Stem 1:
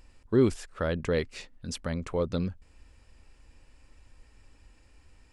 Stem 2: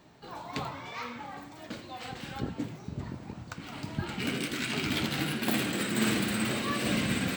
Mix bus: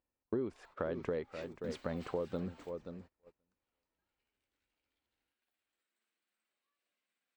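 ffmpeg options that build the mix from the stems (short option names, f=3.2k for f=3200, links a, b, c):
-filter_complex "[0:a]bandpass=f=530:t=q:w=0.58:csg=0,volume=0.5dB,asplit=3[a][b][c];[b]volume=-14dB[d];[1:a]highpass=630,acompressor=threshold=-39dB:ratio=6,volume=-11dB,afade=t=in:st=1.23:d=0.67:silence=0.354813[e];[c]apad=whole_len=324921[f];[e][f]sidechaingate=range=-12dB:threshold=-60dB:ratio=16:detection=peak[g];[d]aecho=0:1:529|1058|1587:1|0.19|0.0361[h];[a][g][h]amix=inputs=3:normalize=0,agate=range=-25dB:threshold=-53dB:ratio=16:detection=peak,acompressor=threshold=-33dB:ratio=8"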